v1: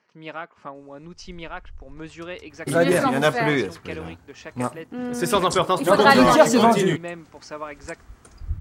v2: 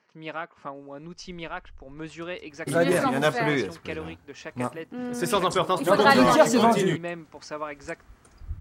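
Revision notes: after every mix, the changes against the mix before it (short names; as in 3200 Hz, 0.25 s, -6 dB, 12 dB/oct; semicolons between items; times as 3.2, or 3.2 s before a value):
first sound -7.0 dB; second sound -3.5 dB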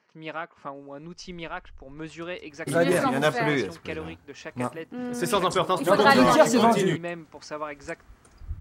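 none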